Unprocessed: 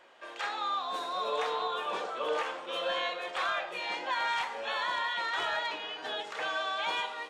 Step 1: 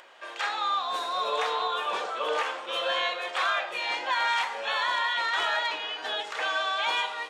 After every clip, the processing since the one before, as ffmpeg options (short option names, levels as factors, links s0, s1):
-af "lowshelf=f=360:g=-12,acompressor=mode=upward:threshold=0.00158:ratio=2.5,volume=2"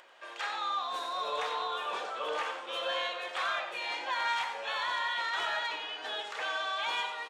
-filter_complex "[0:a]asplit=2[s0][s1];[s1]asoftclip=type=tanh:threshold=0.0422,volume=0.299[s2];[s0][s2]amix=inputs=2:normalize=0,aecho=1:1:92:0.316,volume=0.422"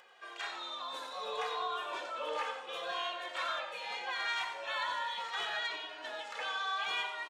-filter_complex "[0:a]asplit=2[s0][s1];[s1]adelay=2,afreqshift=-0.75[s2];[s0][s2]amix=inputs=2:normalize=1"